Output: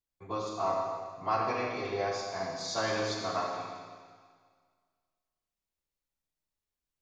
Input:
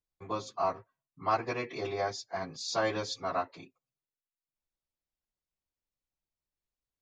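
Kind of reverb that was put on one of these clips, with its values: Schroeder reverb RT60 1.8 s, combs from 28 ms, DRR -1 dB; trim -2.5 dB

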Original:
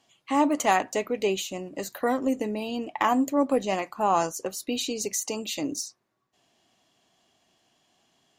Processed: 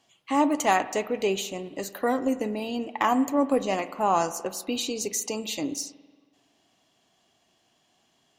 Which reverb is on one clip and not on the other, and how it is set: spring tank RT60 1.5 s, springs 46 ms, chirp 60 ms, DRR 14 dB

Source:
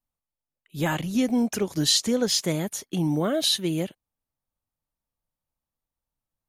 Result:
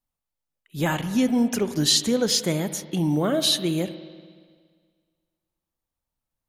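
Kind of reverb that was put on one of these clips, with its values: spring tank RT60 1.8 s, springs 47/58 ms, chirp 50 ms, DRR 11.5 dB; trim +1.5 dB

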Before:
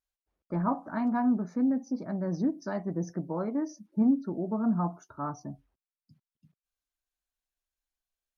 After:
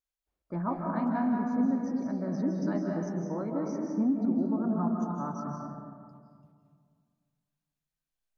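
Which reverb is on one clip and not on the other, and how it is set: algorithmic reverb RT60 2.1 s, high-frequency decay 0.45×, pre-delay 120 ms, DRR -0.5 dB; trim -3.5 dB

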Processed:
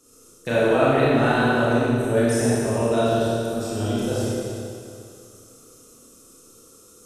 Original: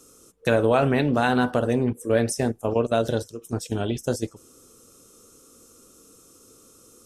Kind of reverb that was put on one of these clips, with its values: Schroeder reverb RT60 2.4 s, combs from 26 ms, DRR -9.5 dB; trim -7 dB

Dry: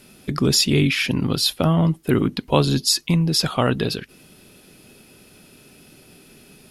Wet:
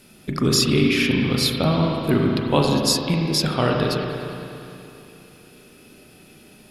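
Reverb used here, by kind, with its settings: spring tank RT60 2.9 s, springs 33/38 ms, chirp 65 ms, DRR 0 dB; trim -2 dB

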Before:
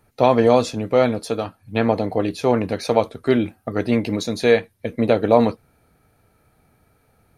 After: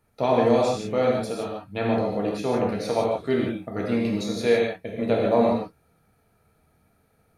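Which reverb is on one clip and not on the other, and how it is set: gated-style reverb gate 190 ms flat, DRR -2.5 dB; trim -9 dB

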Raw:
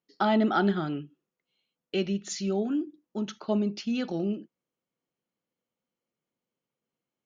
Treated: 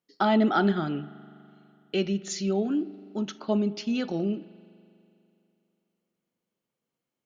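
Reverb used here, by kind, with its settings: spring tank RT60 2.8 s, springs 41 ms, chirp 30 ms, DRR 18 dB; trim +1.5 dB

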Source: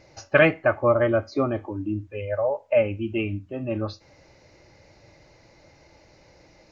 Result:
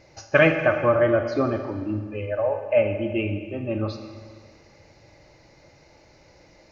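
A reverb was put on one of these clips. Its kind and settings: Schroeder reverb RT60 1.8 s, DRR 6.5 dB

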